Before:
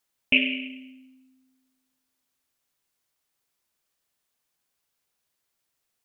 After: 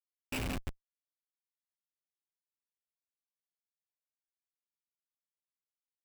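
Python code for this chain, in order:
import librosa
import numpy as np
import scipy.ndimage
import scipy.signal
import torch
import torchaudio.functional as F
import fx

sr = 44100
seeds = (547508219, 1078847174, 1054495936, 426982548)

y = fx.echo_wet_lowpass(x, sr, ms=172, feedback_pct=53, hz=2200.0, wet_db=-3.5)
y = fx.cheby_harmonics(y, sr, harmonics=(3, 6, 7), levels_db=(-24, -29, -30), full_scale_db=-5.0)
y = fx.schmitt(y, sr, flips_db=-25.5)
y = y * librosa.db_to_amplitude(2.0)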